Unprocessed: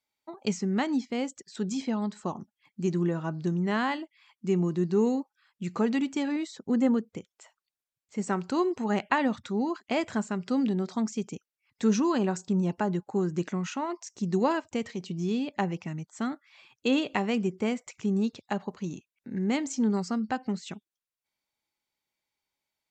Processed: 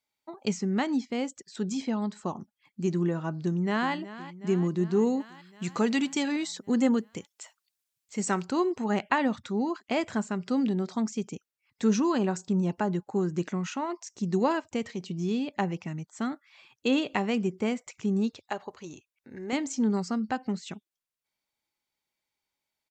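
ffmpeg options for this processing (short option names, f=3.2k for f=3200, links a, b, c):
-filter_complex "[0:a]asplit=2[a][b];[b]afade=t=in:st=3.43:d=0.01,afade=t=out:st=3.93:d=0.01,aecho=0:1:370|740|1110|1480|1850|2220|2590|2960|3330:0.177828|0.12448|0.0871357|0.060995|0.0426965|0.0298875|0.0209213|0.0146449|0.0102514[c];[a][c]amix=inputs=2:normalize=0,asettb=1/sr,asplit=3[d][e][f];[d]atrim=end=5.204[g];[e]atrim=start=5.2:end=8.45,asetpts=PTS-STARTPTS,afade=t=in:d=0.004:c=qsin,afade=t=out:st=3.246:d=0.004:c=qsin,highshelf=f=2.3k:g=10[h];[f]atrim=start=8.446[i];[g][h]acrossfade=d=0.004:c1=hsin:c2=qsin[j];[j][i]acrossfade=d=0.004:c1=qsin:c2=hsin,asettb=1/sr,asplit=3[k][l][m];[k]atrim=end=18.314[n];[l]atrim=start=18.31:end=19.53,asetpts=PTS-STARTPTS,afade=t=in:d=0.004:c=qsin,afade=t=out:st=1.216:d=0.004:c=qsin,equalizer=f=190:w=1.5:g=-14.5[o];[m]atrim=start=19.526[p];[n][o]acrossfade=d=0.004:c1=hsin:c2=qsin[q];[q][p]acrossfade=d=0.004:c1=qsin:c2=hsin"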